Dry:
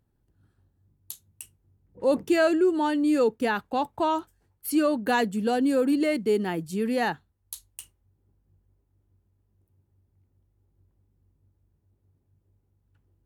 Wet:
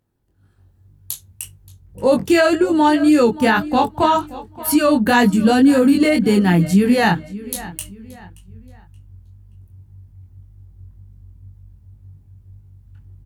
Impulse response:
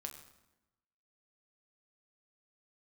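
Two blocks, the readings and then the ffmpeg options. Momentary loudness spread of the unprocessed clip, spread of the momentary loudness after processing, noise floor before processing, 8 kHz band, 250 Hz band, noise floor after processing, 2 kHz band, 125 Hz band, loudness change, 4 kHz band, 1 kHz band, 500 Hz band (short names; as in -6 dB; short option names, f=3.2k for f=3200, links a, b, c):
18 LU, 17 LU, -72 dBFS, +12.0 dB, +11.0 dB, -53 dBFS, +10.5 dB, +18.5 dB, +9.5 dB, +11.5 dB, +10.0 dB, +7.0 dB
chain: -filter_complex "[0:a]lowshelf=f=91:g=-12,asplit=2[a][b];[b]adelay=576,lowpass=f=5k:p=1,volume=-18dB,asplit=2[c][d];[d]adelay=576,lowpass=f=5k:p=1,volume=0.36,asplit=2[e][f];[f]adelay=576,lowpass=f=5k:p=1,volume=0.36[g];[a][c][e][g]amix=inputs=4:normalize=0,asubboost=boost=9.5:cutoff=130,dynaudnorm=f=210:g=5:m=8dB,flanger=delay=20:depth=3.5:speed=1.9,alimiter=level_in=12dB:limit=-1dB:release=50:level=0:latency=1,volume=-4.5dB"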